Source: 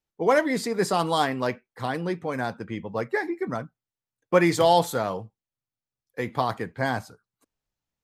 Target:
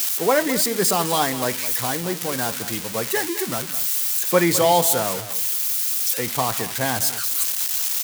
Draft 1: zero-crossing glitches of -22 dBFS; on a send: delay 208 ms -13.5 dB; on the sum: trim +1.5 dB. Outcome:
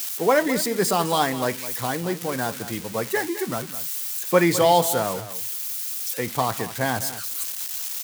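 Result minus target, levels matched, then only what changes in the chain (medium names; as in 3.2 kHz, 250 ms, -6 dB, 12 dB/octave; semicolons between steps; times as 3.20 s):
zero-crossing glitches: distortion -7 dB
change: zero-crossing glitches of -15 dBFS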